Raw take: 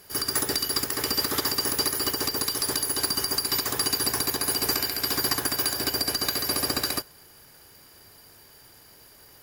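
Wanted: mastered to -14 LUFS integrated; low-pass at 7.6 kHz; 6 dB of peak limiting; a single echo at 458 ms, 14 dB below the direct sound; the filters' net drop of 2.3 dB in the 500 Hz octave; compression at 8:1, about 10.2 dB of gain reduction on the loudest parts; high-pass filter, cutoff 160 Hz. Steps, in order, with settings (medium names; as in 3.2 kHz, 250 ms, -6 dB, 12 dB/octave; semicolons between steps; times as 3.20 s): high-pass 160 Hz; low-pass 7.6 kHz; peaking EQ 500 Hz -3 dB; compression 8:1, threshold -34 dBFS; peak limiter -26.5 dBFS; delay 458 ms -14 dB; trim +23.5 dB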